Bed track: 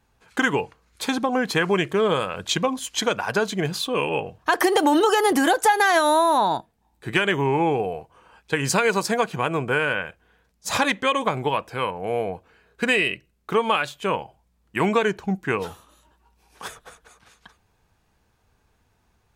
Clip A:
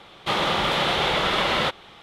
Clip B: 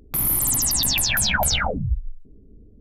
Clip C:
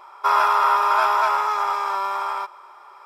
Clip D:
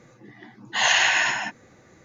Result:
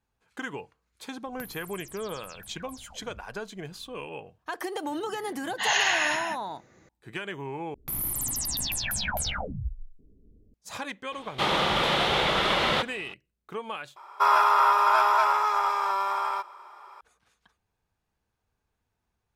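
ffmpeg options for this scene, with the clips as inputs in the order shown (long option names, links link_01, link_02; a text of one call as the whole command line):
ffmpeg -i bed.wav -i cue0.wav -i cue1.wav -i cue2.wav -i cue3.wav -filter_complex "[2:a]asplit=2[link_01][link_02];[0:a]volume=-14.5dB[link_03];[link_01]acompressor=threshold=-36dB:ratio=10:attack=93:release=706:knee=1:detection=rms[link_04];[3:a]highpass=68[link_05];[link_03]asplit=3[link_06][link_07][link_08];[link_06]atrim=end=7.744[link_09];[link_02]atrim=end=2.8,asetpts=PTS-STARTPTS,volume=-9.5dB[link_10];[link_07]atrim=start=10.536:end=13.964[link_11];[link_05]atrim=end=3.05,asetpts=PTS-STARTPTS,volume=-2.5dB[link_12];[link_08]atrim=start=17.006[link_13];[link_04]atrim=end=2.8,asetpts=PTS-STARTPTS,volume=-11dB,afade=type=in:duration=0.004:curve=hsin,afade=type=out:start_time=2.796:duration=0.004:curve=hsin,adelay=1260[link_14];[4:a]atrim=end=2.04,asetpts=PTS-STARTPTS,volume=-5dB,afade=type=in:duration=0.004:curve=hsin,afade=type=out:start_time=2.036:duration=0.004:curve=hsin,adelay=213885S[link_15];[1:a]atrim=end=2.02,asetpts=PTS-STARTPTS,volume=-2dB,afade=type=in:duration=0.004:curve=hsin,afade=type=out:start_time=2.016:duration=0.004:curve=hsin,adelay=11120[link_16];[link_09][link_10]acrossfade=duration=0.004:curve1=hsin:curve2=hsin[link_17];[link_17][link_11]acrossfade=duration=0.004:curve1=hsin:curve2=hsin[link_18];[link_18][link_12]acrossfade=duration=0.004:curve1=hsin:curve2=hsin[link_19];[link_19][link_13]acrossfade=duration=0.004:curve1=hsin:curve2=hsin[link_20];[link_20][link_14][link_15][link_16]amix=inputs=4:normalize=0" out.wav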